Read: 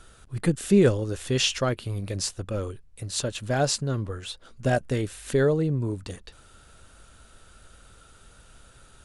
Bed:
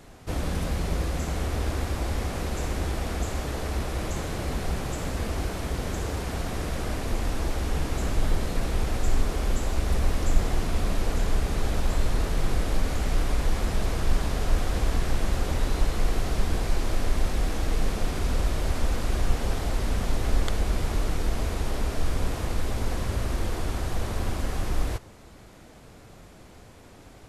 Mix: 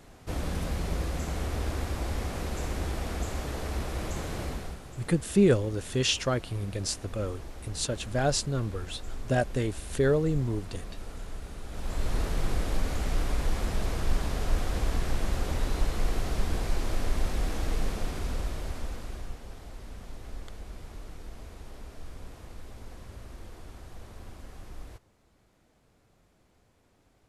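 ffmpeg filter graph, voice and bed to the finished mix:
-filter_complex "[0:a]adelay=4650,volume=-2.5dB[a];[1:a]volume=8dB,afade=t=out:st=4.42:d=0.37:silence=0.266073,afade=t=in:st=11.68:d=0.49:silence=0.266073,afade=t=out:st=17.69:d=1.72:silence=0.211349[b];[a][b]amix=inputs=2:normalize=0"

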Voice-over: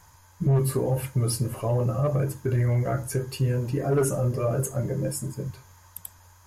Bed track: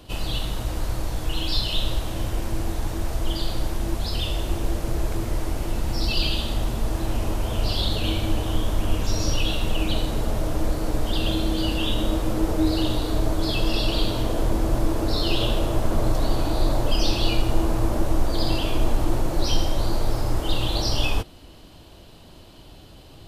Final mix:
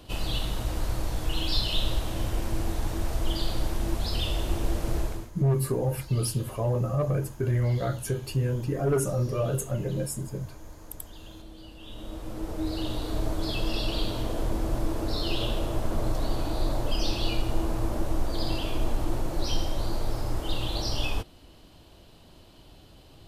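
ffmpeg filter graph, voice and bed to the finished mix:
-filter_complex "[0:a]adelay=4950,volume=-2dB[a];[1:a]volume=14dB,afade=t=out:st=4.97:d=0.34:silence=0.1,afade=t=in:st=11.79:d=1.42:silence=0.149624[b];[a][b]amix=inputs=2:normalize=0"

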